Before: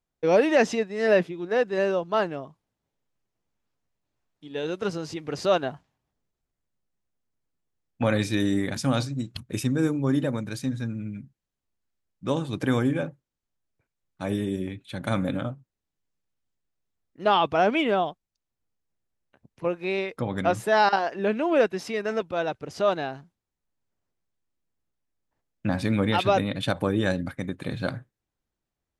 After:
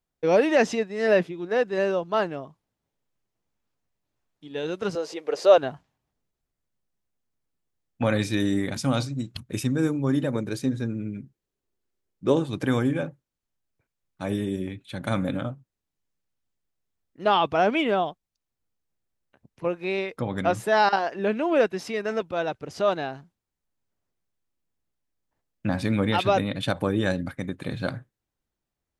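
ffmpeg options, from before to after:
-filter_complex "[0:a]asettb=1/sr,asplit=3[a][b][c];[a]atrim=end=4.954[d];[b]atrim=start=4.95:end=5.58,asetpts=PTS-STARTPTS,afade=t=in:d=0.004:c=qsin,afade=t=out:st=0.626:d=0.004:c=qsin,highpass=f=490:t=q:w=2.8[e];[c]atrim=start=5.576[f];[d][e]acrossfade=d=0.004:c1=hsin:c2=qsin[g];[g][f]acrossfade=d=0.004:c1=qsin:c2=hsin,asettb=1/sr,asplit=3[h][i][j];[h]atrim=end=8.684[k];[i]atrim=start=8.68:end=9.14,asetpts=PTS-STARTPTS,afade=t=in:d=0.004:c=qsin,afade=t=out:st=0.456:d=0.004:c=qsin,bandreject=f=1.7k:w=12[l];[j]atrim=start=9.136[m];[k][l]acrossfade=d=0.004:c1=hsin:c2=qsin[n];[n][m]acrossfade=d=0.004:c1=qsin:c2=hsin,asettb=1/sr,asplit=3[o][p][q];[o]atrim=end=10.354[r];[p]atrim=start=10.35:end=12.44,asetpts=PTS-STARTPTS,afade=t=in:d=0.004:c=qsin,afade=t=out:st=2.086:d=0.004:c=qsin,equalizer=f=390:t=o:w=0.72:g=11[s];[q]atrim=start=12.436[t];[r][s]acrossfade=d=0.004:c1=hsin:c2=qsin[u];[u][t]acrossfade=d=0.004:c1=qsin:c2=hsin"

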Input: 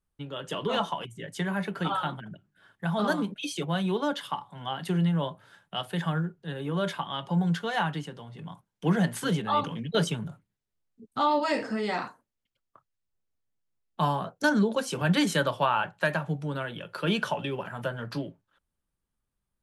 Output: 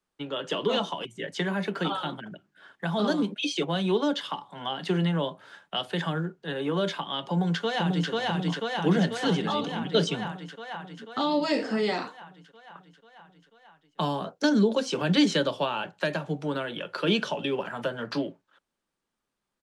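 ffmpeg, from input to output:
-filter_complex "[0:a]asplit=2[a][b];[b]afade=t=in:st=7.29:d=0.01,afade=t=out:st=8.1:d=0.01,aecho=0:1:490|980|1470|1960|2450|2940|3430|3920|4410|4900|5390|5880:0.944061|0.660843|0.46259|0.323813|0.226669|0.158668|0.111068|0.0777475|0.0544232|0.0380963|0.0266674|0.0186672[c];[a][c]amix=inputs=2:normalize=0,acrossover=split=6400[d][e];[e]acompressor=threshold=-57dB:ratio=4:attack=1:release=60[f];[d][f]amix=inputs=2:normalize=0,acrossover=split=210 7900:gain=0.112 1 0.178[g][h][i];[g][h][i]amix=inputs=3:normalize=0,acrossover=split=490|3000[j][k][l];[k]acompressor=threshold=-40dB:ratio=6[m];[j][m][l]amix=inputs=3:normalize=0,volume=7dB"

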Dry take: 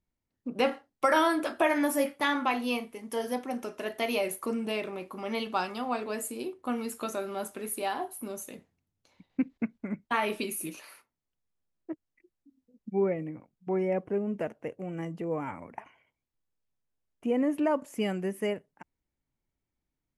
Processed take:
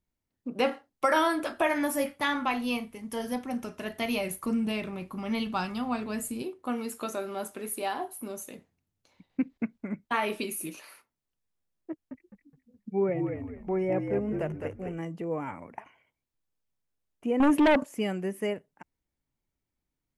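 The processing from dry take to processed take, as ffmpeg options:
-filter_complex "[0:a]asettb=1/sr,asplit=3[a][b][c];[a]atrim=end=0.894[d];[b]atrim=start=0.89:end=6.42,asetpts=PTS-STARTPTS,afade=t=in:d=0.004:c=qsin,afade=t=out:st=5.526:d=0.004:c=qsin,asubboost=boost=9:cutoff=150[e];[c]atrim=start=6.416[f];[d][e]acrossfade=d=0.004:c1=hsin:c2=qsin[g];[g][f]acrossfade=d=0.004:c1=qsin:c2=hsin,asettb=1/sr,asplit=3[h][i][j];[h]atrim=end=11.904[k];[i]atrim=start=11.9:end=14.98,asetpts=PTS-STARTPTS,afade=t=in:d=0.004:c=qsin,afade=t=out:st=3.076:d=0.004:c=qsin,asplit=5[l][m][n][o][p];[m]adelay=209,afreqshift=-56,volume=-5dB[q];[n]adelay=418,afreqshift=-112,volume=-15.2dB[r];[o]adelay=627,afreqshift=-168,volume=-25.3dB[s];[p]adelay=836,afreqshift=-224,volume=-35.5dB[t];[l][q][r][s][t]amix=inputs=5:normalize=0,atrim=end_sample=135828[u];[j]atrim=start=14.976[v];[k][u]acrossfade=d=0.004:c1=hsin:c2=qsin[w];[w][v]acrossfade=d=0.004:c1=qsin:c2=hsin,asettb=1/sr,asplit=3[x][y][z];[x]atrim=end=17.404[aa];[y]atrim=start=17.4:end=17.84,asetpts=PTS-STARTPTS,afade=t=in:d=0.004:c=qsin,afade=t=out:st=0.436:d=0.004:c=qsin,aeval=exprs='0.133*sin(PI/2*2.24*val(0)/0.133)':c=same[ab];[z]atrim=start=17.836[ac];[aa][ab]acrossfade=d=0.004:c1=hsin:c2=qsin[ad];[ad][ac]acrossfade=d=0.004:c1=qsin:c2=hsin"

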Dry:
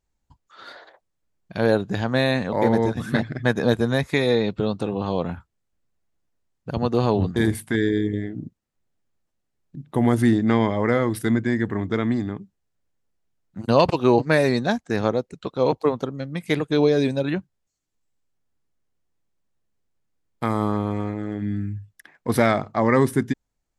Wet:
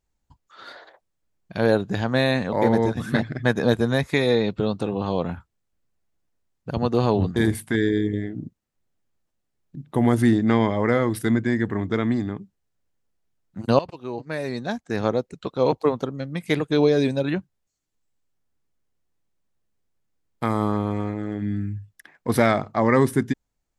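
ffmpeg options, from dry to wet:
-filter_complex "[0:a]asplit=2[a][b];[a]atrim=end=13.79,asetpts=PTS-STARTPTS,afade=t=out:st=13.786:d=0.004:c=hsin:silence=0.133352[c];[b]atrim=start=13.79,asetpts=PTS-STARTPTS,afade=t=in:d=1.36:c=qua:silence=0.133352[d];[c][d]concat=n=2:v=0:a=1"

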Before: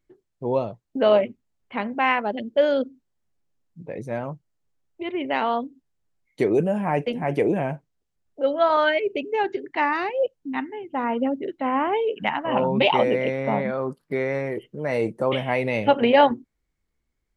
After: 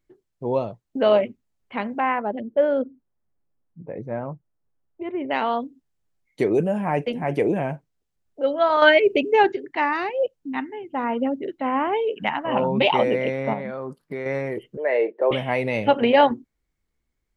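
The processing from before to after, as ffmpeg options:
-filter_complex "[0:a]asettb=1/sr,asplit=3[a][b][c];[a]atrim=end=2.004[d];[b]atrim=start=2:end=5.31,asetpts=PTS-STARTPTS,afade=t=in:d=0.004:c=qsin,afade=t=out:st=3.306:d=0.004:c=qsin,lowpass=1.5k[e];[c]atrim=start=5.306[f];[d][e]acrossfade=d=0.004:c1=hsin:c2=qsin[g];[g][f]acrossfade=d=0.004:c1=qsin:c2=hsin,asettb=1/sr,asplit=3[h][i][j];[h]atrim=end=13.534[k];[i]atrim=start=13.53:end=14.26,asetpts=PTS-STARTPTS,afade=t=in:d=0.004:c=qsin,afade=t=out:st=0.726:d=0.004:c=qsin,acompressor=threshold=-30dB:ratio=2:attack=3.2:release=140:knee=1:detection=peak[l];[j]atrim=start=14.256[m];[k][l]acrossfade=d=0.004:c1=hsin:c2=qsin[n];[n][m]acrossfade=d=0.004:c1=qsin:c2=hsin,asettb=1/sr,asplit=3[o][p][q];[o]atrim=end=14.774[r];[p]atrim=start=14.77:end=15.31,asetpts=PTS-STARTPTS,afade=t=in:d=0.004:c=qsin,afade=t=out:st=0.536:d=0.004:c=qsin,highpass=f=380:w=0.5412,highpass=f=380:w=1.3066,equalizer=f=400:t=q:w=4:g=8,equalizer=f=610:t=q:w=4:g=5,equalizer=f=1.3k:t=q:w=4:g=-7,equalizer=f=1.8k:t=q:w=4:g=7,lowpass=f=3.2k:w=0.5412,lowpass=f=3.2k:w=1.3066[s];[q]atrim=start=15.306[t];[r][s]acrossfade=d=0.004:c1=hsin:c2=qsin[u];[u][t]acrossfade=d=0.004:c1=qsin:c2=hsin,asplit=3[v][w][x];[v]atrim=end=8.822[y];[w]atrim=start=8.818:end=9.522,asetpts=PTS-STARTPTS,volume=7dB[z];[x]atrim=start=9.518[aa];[y][z]acrossfade=d=0.004:c1=hsin:c2=hsin[ab];[ab][aa]acrossfade=d=0.004:c1=hsin:c2=hsin"

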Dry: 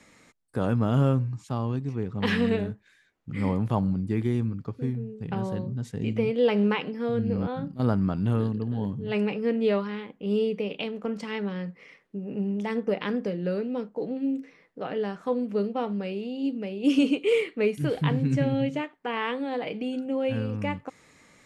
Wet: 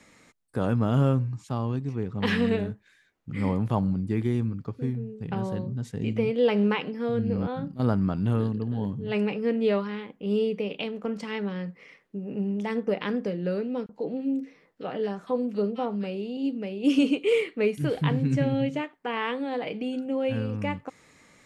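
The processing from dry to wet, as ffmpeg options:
-filter_complex "[0:a]asettb=1/sr,asplit=3[a][b][c];[a]atrim=end=13.864[d];[b]atrim=start=13.86:end=16.37,asetpts=PTS-STARTPTS,afade=t=in:d=0.004:c=qsin,afade=t=out:st=2.506:d=0.004:c=qsin,acrossover=split=1700[e][f];[e]adelay=30[g];[g][f]amix=inputs=2:normalize=0,atrim=end_sample=110691[h];[c]atrim=start=16.366[i];[d][h]acrossfade=d=0.004:c1=hsin:c2=qsin[j];[j][i]acrossfade=d=0.004:c1=qsin:c2=hsin"

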